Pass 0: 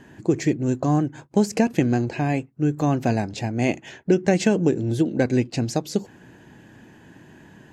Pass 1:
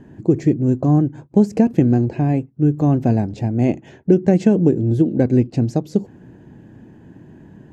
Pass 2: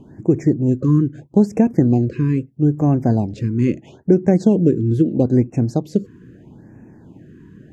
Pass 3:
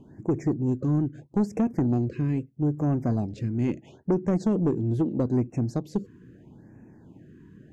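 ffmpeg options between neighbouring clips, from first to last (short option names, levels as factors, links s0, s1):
-af "tiltshelf=f=830:g=9,volume=0.841"
-af "afftfilt=real='re*(1-between(b*sr/1024,650*pow(3900/650,0.5+0.5*sin(2*PI*0.77*pts/sr))/1.41,650*pow(3900/650,0.5+0.5*sin(2*PI*0.77*pts/sr))*1.41))':imag='im*(1-between(b*sr/1024,650*pow(3900/650,0.5+0.5*sin(2*PI*0.77*pts/sr))/1.41,650*pow(3900/650,0.5+0.5*sin(2*PI*0.77*pts/sr))*1.41))':win_size=1024:overlap=0.75"
-af "asoftclip=type=tanh:threshold=0.335,volume=0.447"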